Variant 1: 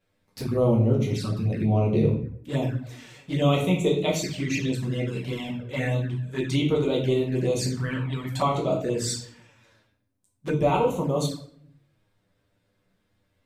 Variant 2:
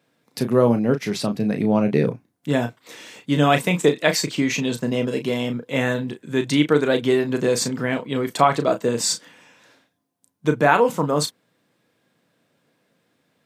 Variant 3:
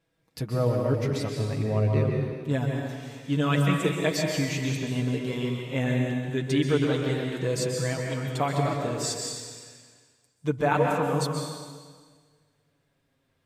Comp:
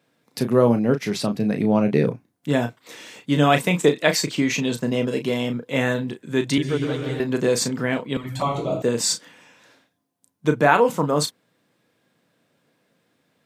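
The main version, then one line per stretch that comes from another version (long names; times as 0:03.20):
2
0:06.58–0:07.20: punch in from 3
0:08.17–0:08.82: punch in from 1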